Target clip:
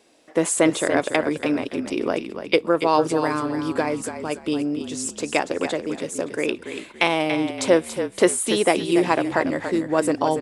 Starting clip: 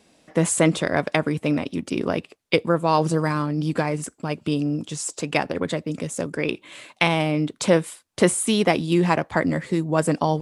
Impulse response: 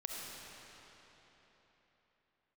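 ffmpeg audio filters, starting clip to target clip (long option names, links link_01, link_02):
-filter_complex "[0:a]lowshelf=frequency=240:width_type=q:width=1.5:gain=-9,asplit=4[link_01][link_02][link_03][link_04];[link_02]adelay=284,afreqshift=-37,volume=-9dB[link_05];[link_03]adelay=568,afreqshift=-74,volume=-19.5dB[link_06];[link_04]adelay=852,afreqshift=-111,volume=-29.9dB[link_07];[link_01][link_05][link_06][link_07]amix=inputs=4:normalize=0"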